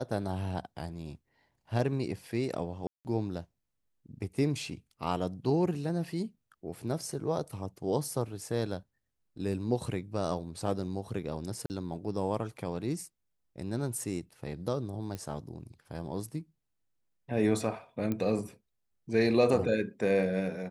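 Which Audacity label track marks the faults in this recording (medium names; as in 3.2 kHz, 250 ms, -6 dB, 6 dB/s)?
2.870000	3.050000	dropout 179 ms
11.660000	11.700000	dropout 39 ms
15.150000	15.150000	pop -24 dBFS
18.120000	18.120000	pop -20 dBFS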